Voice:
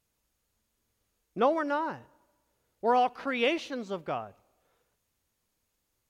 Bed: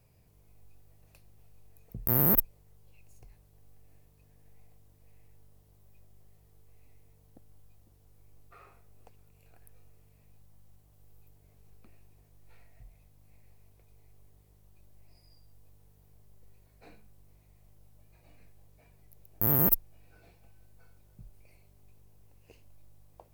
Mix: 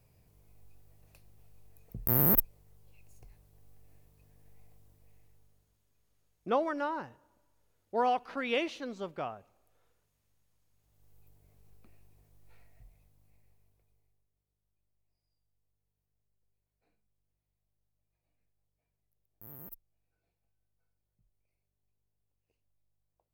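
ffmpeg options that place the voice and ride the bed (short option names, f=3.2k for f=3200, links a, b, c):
-filter_complex "[0:a]adelay=5100,volume=-4dB[a];[1:a]volume=14.5dB,afade=t=out:st=4.85:d=0.98:silence=0.133352,afade=t=in:st=10.71:d=0.57:silence=0.16788,afade=t=out:st=12.61:d=1.66:silence=0.0841395[b];[a][b]amix=inputs=2:normalize=0"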